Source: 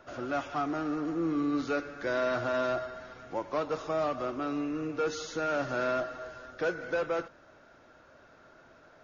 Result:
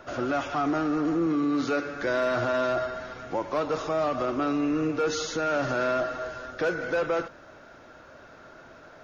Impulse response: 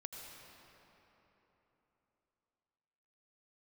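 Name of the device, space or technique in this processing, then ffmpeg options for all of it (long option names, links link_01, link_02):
clipper into limiter: -filter_complex "[0:a]asoftclip=type=hard:threshold=-22.5dB,alimiter=level_in=3dB:limit=-24dB:level=0:latency=1:release=31,volume=-3dB,asettb=1/sr,asplit=3[link_01][link_02][link_03];[link_01]atrim=end=1.264[link_04];[link_02]atrim=start=1.26:end=1.94,asetpts=PTS-STARTPTS,afade=type=in:duration=0.004:curve=qsin,afade=type=out:start_time=0.676:duration=0.004:curve=qsin,highpass=100[link_05];[link_03]atrim=start=1.936[link_06];[link_04][link_05]acrossfade=duration=0.004:curve1=hsin:curve2=qsin[link_07];[link_07][link_06]acrossfade=duration=0.004:curve1=qsin:curve2=hsin,volume=8dB"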